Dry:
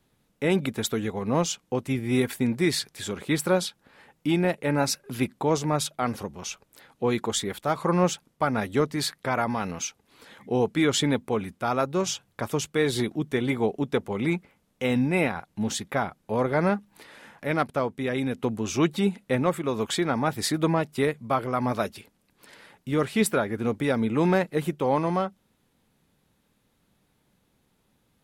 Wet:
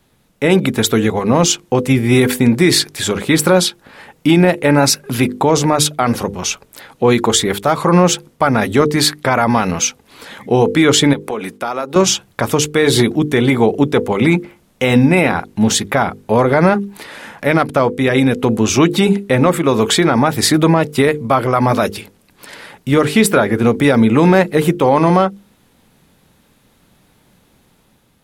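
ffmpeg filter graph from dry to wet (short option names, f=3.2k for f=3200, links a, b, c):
-filter_complex "[0:a]asettb=1/sr,asplit=3[a][b][c];[a]atrim=end=11.134[d];[b]atrim=start=11.13:end=11.96,asetpts=PTS-STARTPTS,afade=t=in:d=0.004:c=qsin,afade=t=out:st=0.826:d=0.004:c=qsin,highpass=270,agate=range=-33dB:threshold=-60dB:ratio=3:release=100:detection=peak,acompressor=threshold=-32dB:ratio=6:attack=3.2:release=140:knee=1:detection=peak[e];[c]atrim=start=11.956[f];[d][e]acrossfade=d=0.004:c1=hsin:c2=qsin[g];[g][f]acrossfade=d=0.004:c1=qsin:c2=hsin,bandreject=f=50:t=h:w=6,bandreject=f=100:t=h:w=6,bandreject=f=150:t=h:w=6,bandreject=f=200:t=h:w=6,bandreject=f=250:t=h:w=6,bandreject=f=300:t=h:w=6,bandreject=f=350:t=h:w=6,bandreject=f=400:t=h:w=6,bandreject=f=450:t=h:w=6,bandreject=f=500:t=h:w=6,dynaudnorm=f=260:g=5:m=4dB,alimiter=level_in=12.5dB:limit=-1dB:release=50:level=0:latency=1,volume=-1dB"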